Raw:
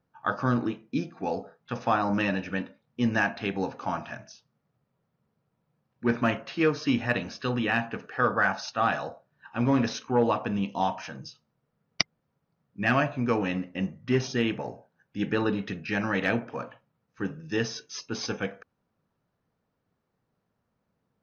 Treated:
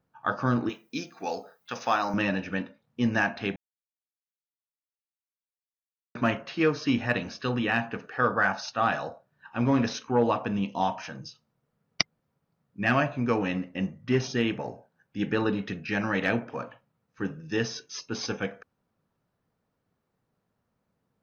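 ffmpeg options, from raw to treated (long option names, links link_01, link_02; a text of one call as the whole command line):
ffmpeg -i in.wav -filter_complex "[0:a]asettb=1/sr,asplit=3[link_01][link_02][link_03];[link_01]atrim=end=0.694[link_04];[link_02]atrim=start=0.69:end=2.14,asetpts=PTS-STARTPTS,afade=type=in:duration=0.004:curve=qsin,afade=type=out:start_time=1.446:duration=0.004:curve=qsin,aemphasis=mode=production:type=riaa[link_05];[link_03]atrim=start=2.136[link_06];[link_04][link_05]acrossfade=duration=0.004:curve1=hsin:curve2=qsin[link_07];[link_07][link_06]acrossfade=duration=0.004:curve1=qsin:curve2=hsin,asplit=3[link_08][link_09][link_10];[link_08]atrim=end=3.56,asetpts=PTS-STARTPTS,afade=type=out:start_time=3.556:duration=0.004:curve=hsin[link_11];[link_09]atrim=start=3.56:end=6.15,asetpts=PTS-STARTPTS,volume=0[link_12];[link_10]atrim=start=6.15,asetpts=PTS-STARTPTS,afade=type=in:duration=0.004:curve=hsin[link_13];[link_11][link_12][link_13]concat=n=3:v=0:a=1" out.wav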